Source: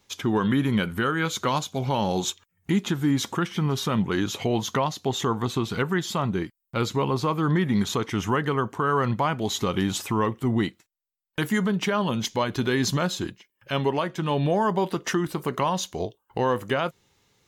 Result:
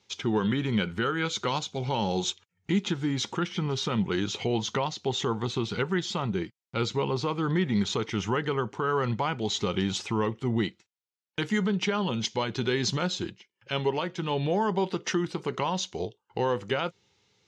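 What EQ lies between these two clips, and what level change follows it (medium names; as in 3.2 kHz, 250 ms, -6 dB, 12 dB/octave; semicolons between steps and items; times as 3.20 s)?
cabinet simulation 100–6300 Hz, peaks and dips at 150 Hz -5 dB, 270 Hz -8 dB, 630 Hz -8 dB, 1.1 kHz -7 dB, 1.7 kHz -5 dB; 0.0 dB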